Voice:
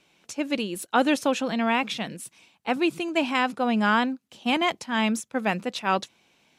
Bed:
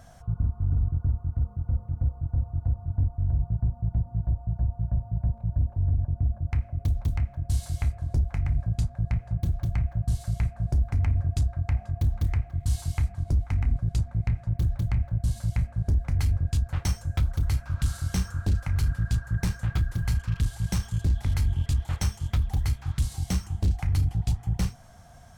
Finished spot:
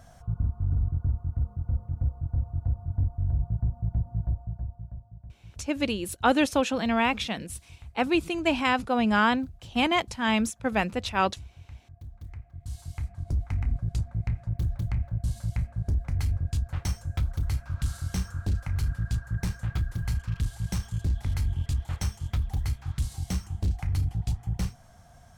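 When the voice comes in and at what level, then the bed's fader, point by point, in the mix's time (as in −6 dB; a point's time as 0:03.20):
5.30 s, −0.5 dB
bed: 0:04.27 −1.5 dB
0:05.25 −19.5 dB
0:12.02 −19.5 dB
0:13.42 −3 dB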